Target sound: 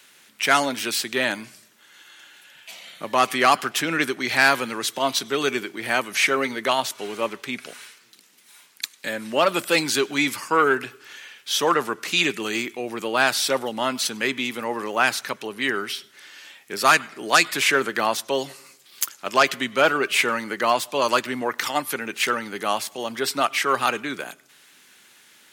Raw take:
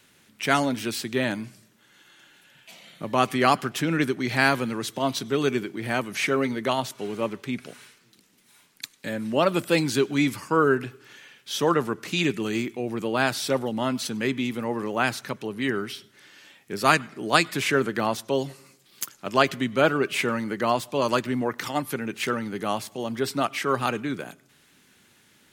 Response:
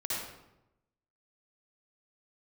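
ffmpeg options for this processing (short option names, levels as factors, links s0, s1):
-af "aeval=exprs='0.841*sin(PI/2*2*val(0)/0.841)':c=same,highpass=f=860:p=1,volume=0.75"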